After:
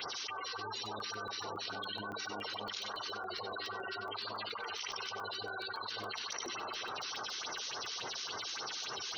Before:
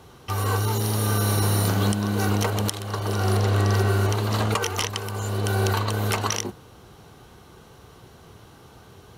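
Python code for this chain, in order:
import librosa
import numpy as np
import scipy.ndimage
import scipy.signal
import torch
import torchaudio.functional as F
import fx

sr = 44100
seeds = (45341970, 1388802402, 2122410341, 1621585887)

p1 = fx.cvsd(x, sr, bps=32000)
p2 = fx.low_shelf(p1, sr, hz=330.0, db=-9.5)
p3 = fx.rev_freeverb(p2, sr, rt60_s=3.5, hf_ratio=0.55, predelay_ms=90, drr_db=13.5)
p4 = fx.phaser_stages(p3, sr, stages=4, low_hz=100.0, high_hz=4300.0, hz=3.5, feedback_pct=15)
p5 = fx.spec_gate(p4, sr, threshold_db=-20, keep='strong')
p6 = np.diff(p5, prepend=0.0)
p7 = fx.hum_notches(p6, sr, base_hz=50, count=4)
p8 = p7 + fx.echo_single(p7, sr, ms=95, db=-18.0, dry=0)
p9 = fx.buffer_crackle(p8, sr, first_s=0.86, period_s=0.14, block=64, kind='zero')
p10 = fx.env_flatten(p9, sr, amount_pct=100)
y = p10 * librosa.db_to_amplitude(-3.0)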